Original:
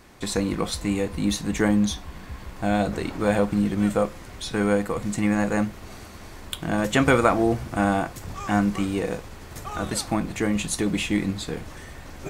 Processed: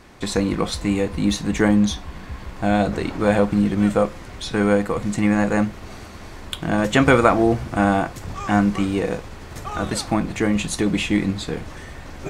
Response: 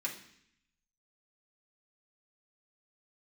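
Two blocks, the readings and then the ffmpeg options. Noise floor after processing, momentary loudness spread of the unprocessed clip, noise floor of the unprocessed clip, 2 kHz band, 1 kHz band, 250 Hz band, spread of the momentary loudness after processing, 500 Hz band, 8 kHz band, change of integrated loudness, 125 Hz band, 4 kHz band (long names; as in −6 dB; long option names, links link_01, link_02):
−38 dBFS, 17 LU, −42 dBFS, +3.5 dB, +4.0 dB, +4.0 dB, 18 LU, +4.0 dB, 0.0 dB, +4.0 dB, +4.0 dB, +3.0 dB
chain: -af "highshelf=frequency=10000:gain=-11.5,volume=4dB"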